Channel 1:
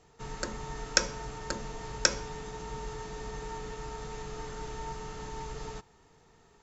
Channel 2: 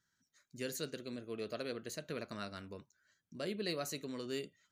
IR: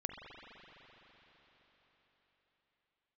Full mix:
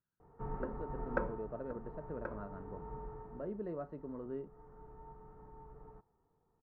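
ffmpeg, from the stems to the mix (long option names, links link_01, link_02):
-filter_complex "[0:a]bandreject=frequency=640:width=17,adelay=200,volume=-0.5dB,afade=type=out:start_time=1.15:duration=0.27:silence=0.375837,afade=type=out:start_time=2.89:duration=0.67:silence=0.354813[link_01];[1:a]bandreject=frequency=2300:width=6.6,volume=-5.5dB,asplit=2[link_02][link_03];[link_03]apad=whole_len=300821[link_04];[link_01][link_04]sidechaincompress=threshold=-47dB:ratio=8:attack=45:release=798[link_05];[link_05][link_02]amix=inputs=2:normalize=0,lowpass=frequency=1200:width=0.5412,lowpass=frequency=1200:width=1.3066,dynaudnorm=framelen=310:gausssize=5:maxgain=4dB"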